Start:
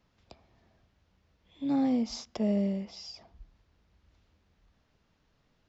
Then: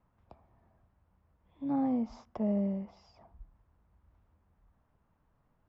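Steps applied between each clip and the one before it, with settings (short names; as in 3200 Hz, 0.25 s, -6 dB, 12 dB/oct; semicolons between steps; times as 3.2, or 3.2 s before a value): EQ curve 110 Hz 0 dB, 420 Hz -5 dB, 1000 Hz +2 dB, 4300 Hz -22 dB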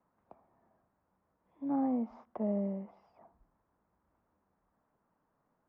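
three-band isolator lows -19 dB, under 180 Hz, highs -23 dB, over 2200 Hz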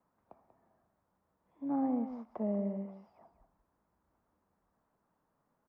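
echo 0.189 s -11 dB; gain -1 dB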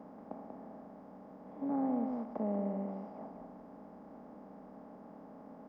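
per-bin compression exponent 0.4; gain -3 dB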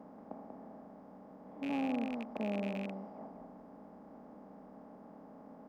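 rattling part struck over -40 dBFS, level -32 dBFS; gain -1.5 dB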